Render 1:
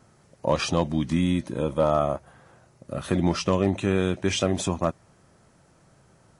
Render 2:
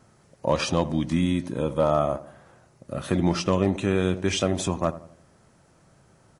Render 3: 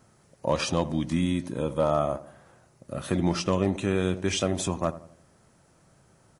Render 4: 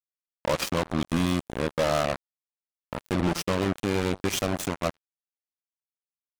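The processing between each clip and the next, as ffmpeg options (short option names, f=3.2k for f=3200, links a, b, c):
-filter_complex "[0:a]asplit=2[a][b];[b]adelay=86,lowpass=f=1k:p=1,volume=-14dB,asplit=2[c][d];[d]adelay=86,lowpass=f=1k:p=1,volume=0.47,asplit=2[e][f];[f]adelay=86,lowpass=f=1k:p=1,volume=0.47,asplit=2[g][h];[h]adelay=86,lowpass=f=1k:p=1,volume=0.47[i];[a][c][e][g][i]amix=inputs=5:normalize=0"
-af "highshelf=f=9.3k:g=7,volume=-2.5dB"
-af "acrusher=bits=3:mix=0:aa=0.5,volume=21.5dB,asoftclip=hard,volume=-21.5dB,volume=3.5dB"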